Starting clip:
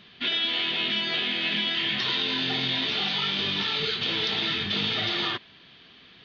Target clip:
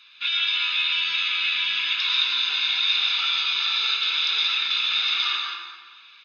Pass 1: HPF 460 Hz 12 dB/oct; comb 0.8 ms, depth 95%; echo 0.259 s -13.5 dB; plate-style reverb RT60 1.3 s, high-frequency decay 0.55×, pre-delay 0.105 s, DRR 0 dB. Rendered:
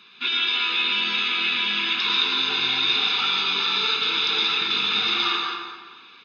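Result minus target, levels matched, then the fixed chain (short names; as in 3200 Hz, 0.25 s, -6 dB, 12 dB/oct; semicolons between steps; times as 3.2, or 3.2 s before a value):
500 Hz band +18.5 dB
HPF 1600 Hz 12 dB/oct; comb 0.8 ms, depth 95%; echo 0.259 s -13.5 dB; plate-style reverb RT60 1.3 s, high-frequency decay 0.55×, pre-delay 0.105 s, DRR 0 dB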